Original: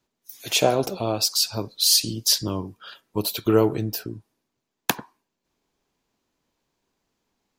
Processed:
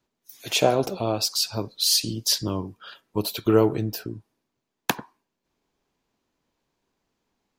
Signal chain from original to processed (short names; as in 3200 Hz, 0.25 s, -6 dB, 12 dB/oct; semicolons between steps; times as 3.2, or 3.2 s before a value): high shelf 4900 Hz -5 dB